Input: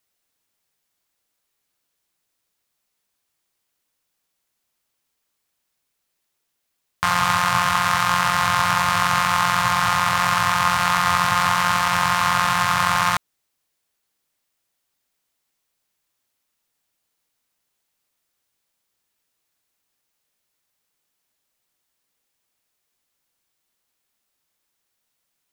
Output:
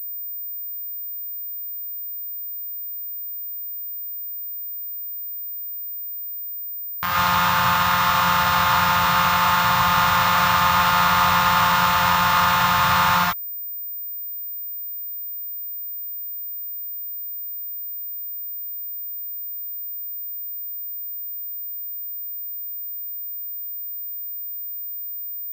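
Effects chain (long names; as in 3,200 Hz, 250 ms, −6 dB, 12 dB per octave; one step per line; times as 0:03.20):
automatic gain control
reverb whose tail is shaped and stops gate 170 ms rising, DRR −6.5 dB
switching amplifier with a slow clock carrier 15,000 Hz
level −7 dB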